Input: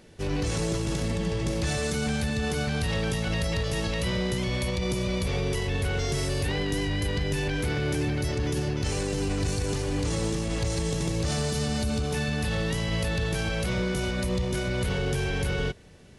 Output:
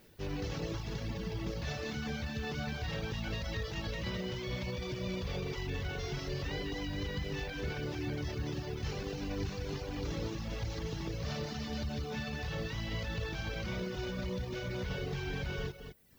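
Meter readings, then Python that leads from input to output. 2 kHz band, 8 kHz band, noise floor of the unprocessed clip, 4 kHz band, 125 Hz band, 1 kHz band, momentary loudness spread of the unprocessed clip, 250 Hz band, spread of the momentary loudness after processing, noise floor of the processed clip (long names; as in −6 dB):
−9.0 dB, −16.5 dB, −30 dBFS, −9.5 dB, −10.0 dB, −9.0 dB, 1 LU, −10.0 dB, 1 LU, −42 dBFS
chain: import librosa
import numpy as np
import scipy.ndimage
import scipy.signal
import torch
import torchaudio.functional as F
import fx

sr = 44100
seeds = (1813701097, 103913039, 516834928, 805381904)

p1 = fx.cvsd(x, sr, bps=32000)
p2 = fx.dmg_noise_colour(p1, sr, seeds[0], colour='violet', level_db=-59.0)
p3 = p2 + fx.echo_single(p2, sr, ms=208, db=-6.5, dry=0)
p4 = fx.dereverb_blind(p3, sr, rt60_s=0.8)
y = p4 * 10.0 ** (-8.0 / 20.0)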